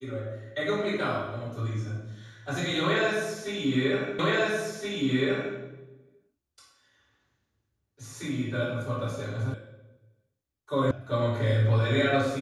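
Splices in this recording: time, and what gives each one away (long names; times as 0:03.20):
0:04.19: the same again, the last 1.37 s
0:09.54: cut off before it has died away
0:10.91: cut off before it has died away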